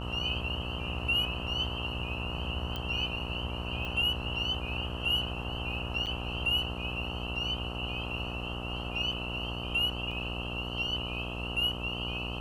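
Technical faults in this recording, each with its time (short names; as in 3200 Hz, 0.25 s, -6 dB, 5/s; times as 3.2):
buzz 60 Hz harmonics 22 -38 dBFS
2.76 pop -22 dBFS
3.85 pop -25 dBFS
6.06–6.07 gap 7.7 ms
10.11 gap 3.9 ms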